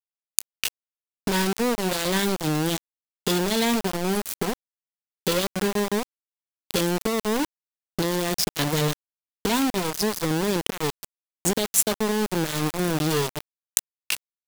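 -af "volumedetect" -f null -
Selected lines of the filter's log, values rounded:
mean_volume: -26.3 dB
max_volume: -1.3 dB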